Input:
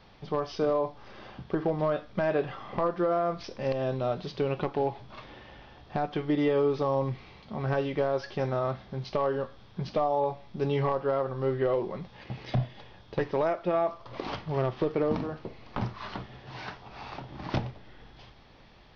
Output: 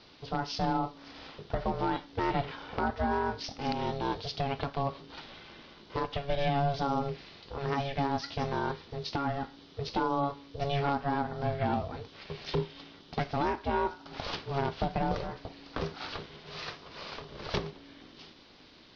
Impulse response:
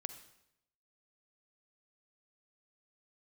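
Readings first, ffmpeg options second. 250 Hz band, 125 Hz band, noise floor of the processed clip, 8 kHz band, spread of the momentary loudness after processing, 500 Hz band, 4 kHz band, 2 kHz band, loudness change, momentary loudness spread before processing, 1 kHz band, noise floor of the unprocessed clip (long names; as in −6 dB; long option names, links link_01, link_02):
−2.0 dB, −2.0 dB, −56 dBFS, can't be measured, 14 LU, −7.0 dB, +5.5 dB, +1.0 dB, −3.5 dB, 15 LU, +1.5 dB, −54 dBFS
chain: -af "lowpass=frequency=4600:width_type=q:width=2,aemphasis=mode=production:type=cd,aeval=exprs='val(0)*sin(2*PI*280*n/s)':channel_layout=same" -ar 22050 -c:a libvorbis -b:a 48k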